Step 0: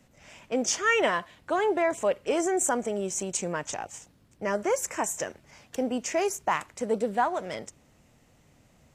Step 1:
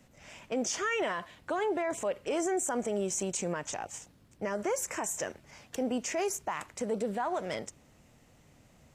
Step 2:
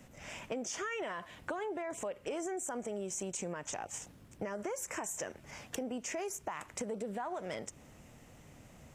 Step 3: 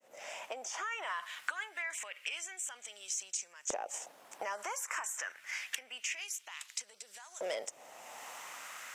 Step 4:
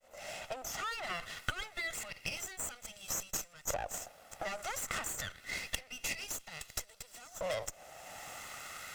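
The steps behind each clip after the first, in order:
peak limiter -23.5 dBFS, peak gain reduction 11 dB
peaking EQ 4.3 kHz -4.5 dB 0.5 oct; compression 6:1, threshold -41 dBFS, peak gain reduction 13.5 dB; trim +4.5 dB
fade-in on the opening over 1.46 s; LFO high-pass saw up 0.27 Hz 510–6600 Hz; three bands compressed up and down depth 70%; trim +1.5 dB
comb filter that takes the minimum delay 1.5 ms; trim +2 dB

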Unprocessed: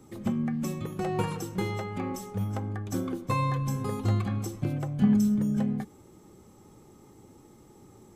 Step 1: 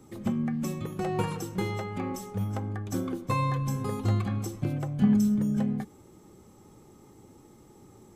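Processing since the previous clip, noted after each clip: no audible change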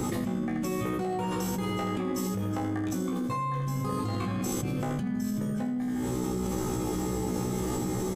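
feedback comb 62 Hz, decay 0.36 s, harmonics all, mix 100%; feedback delay 80 ms, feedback 30%, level -6.5 dB; level flattener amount 100%; trim -1.5 dB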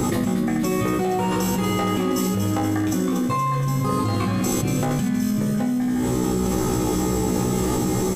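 feedback echo behind a high-pass 236 ms, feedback 67%, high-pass 2 kHz, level -7 dB; trim +8.5 dB

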